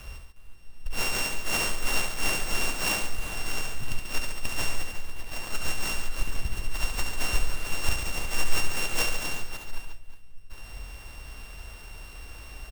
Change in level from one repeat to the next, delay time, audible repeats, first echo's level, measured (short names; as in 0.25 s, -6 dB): no steady repeat, 70 ms, 3, -6.5 dB